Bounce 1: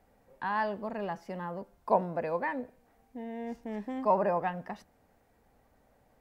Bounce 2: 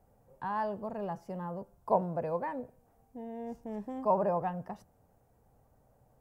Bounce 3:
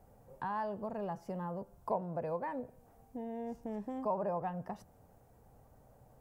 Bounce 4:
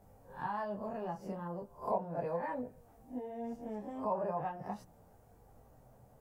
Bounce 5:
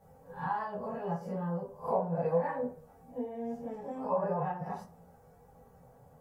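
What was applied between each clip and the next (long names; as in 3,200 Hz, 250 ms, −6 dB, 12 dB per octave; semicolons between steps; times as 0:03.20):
graphic EQ with 10 bands 125 Hz +8 dB, 250 Hz −5 dB, 2,000 Hz −11 dB, 4,000 Hz −8 dB
downward compressor 2 to 1, threshold −45 dBFS, peak gain reduction 13 dB; level +4.5 dB
peak hold with a rise ahead of every peak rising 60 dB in 0.32 s; micro pitch shift up and down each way 13 cents; level +3 dB
convolution reverb RT60 0.40 s, pre-delay 3 ms, DRR −6 dB; level −3.5 dB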